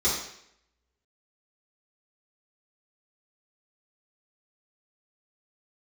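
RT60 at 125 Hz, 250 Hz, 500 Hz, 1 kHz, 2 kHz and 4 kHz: 0.65 s, 0.70 s, 0.75 s, 0.70 s, 0.75 s, 0.70 s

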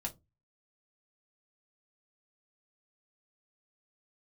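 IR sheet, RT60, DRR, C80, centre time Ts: no single decay rate, 0.0 dB, 29.0 dB, 9 ms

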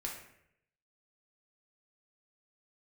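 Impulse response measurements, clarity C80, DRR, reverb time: 8.0 dB, -2.0 dB, 0.75 s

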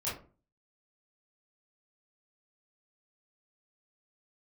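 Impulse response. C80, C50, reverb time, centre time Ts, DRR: 12.0 dB, 5.0 dB, 0.40 s, 39 ms, -9.5 dB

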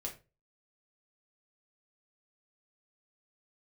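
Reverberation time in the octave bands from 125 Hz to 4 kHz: 0.40 s, 0.30 s, 0.35 s, 0.25 s, 0.25 s, 0.20 s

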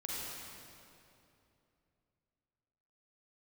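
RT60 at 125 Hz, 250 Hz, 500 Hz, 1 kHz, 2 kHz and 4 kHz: 3.5 s, 3.2 s, 3.0 s, 2.6 s, 2.3 s, 2.1 s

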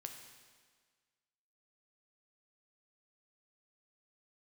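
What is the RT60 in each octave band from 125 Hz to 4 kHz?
1.5 s, 1.6 s, 1.6 s, 1.6 s, 1.6 s, 1.5 s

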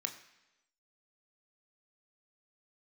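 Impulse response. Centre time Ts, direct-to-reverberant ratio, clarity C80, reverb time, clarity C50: 14 ms, 5.0 dB, 13.0 dB, 1.0 s, 11.5 dB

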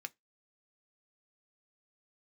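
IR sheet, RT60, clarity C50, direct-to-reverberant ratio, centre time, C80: 0.15 s, 30.5 dB, 9.0 dB, 2 ms, 40.5 dB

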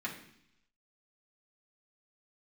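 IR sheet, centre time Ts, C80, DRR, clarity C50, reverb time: 21 ms, 11.5 dB, -5.5 dB, 8.0 dB, 0.70 s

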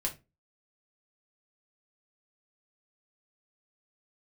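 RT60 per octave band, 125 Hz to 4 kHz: 0.35 s, 0.35 s, 0.30 s, 0.20 s, 0.20 s, 0.20 s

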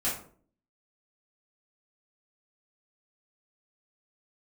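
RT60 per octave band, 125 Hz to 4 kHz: 0.60 s, 0.70 s, 0.55 s, 0.45 s, 0.35 s, 0.30 s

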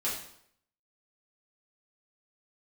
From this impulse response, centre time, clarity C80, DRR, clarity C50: 40 ms, 7.5 dB, -8.0 dB, 4.0 dB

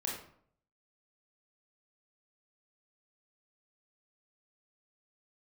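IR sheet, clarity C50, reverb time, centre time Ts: 3.5 dB, 0.60 s, 41 ms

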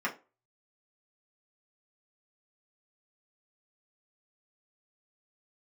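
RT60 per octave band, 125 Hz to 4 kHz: 0.25 s, 0.30 s, 0.35 s, 0.30 s, 0.25 s, 0.20 s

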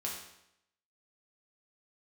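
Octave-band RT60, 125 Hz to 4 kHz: 0.80 s, 0.80 s, 0.80 s, 0.80 s, 0.75 s, 0.75 s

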